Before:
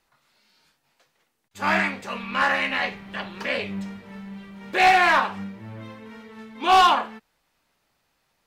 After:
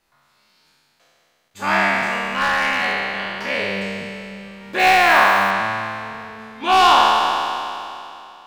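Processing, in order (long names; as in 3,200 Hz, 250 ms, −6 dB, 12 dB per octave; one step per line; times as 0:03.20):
peak hold with a decay on every bin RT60 2.78 s
0:01.96–0:03.39: hard clipping −13.5 dBFS, distortion −24 dB
0:04.79–0:05.51: log-companded quantiser 6 bits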